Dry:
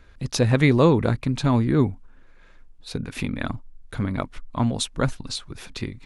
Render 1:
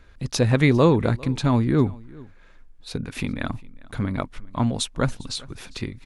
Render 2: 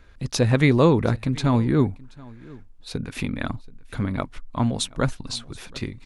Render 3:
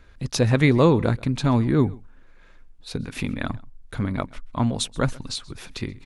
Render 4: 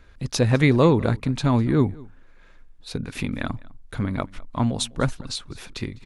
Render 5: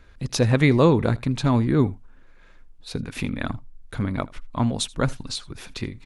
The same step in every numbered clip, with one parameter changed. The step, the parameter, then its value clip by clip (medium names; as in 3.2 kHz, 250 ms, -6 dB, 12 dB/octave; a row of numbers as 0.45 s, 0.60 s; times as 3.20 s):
delay, time: 401 ms, 729 ms, 130 ms, 203 ms, 80 ms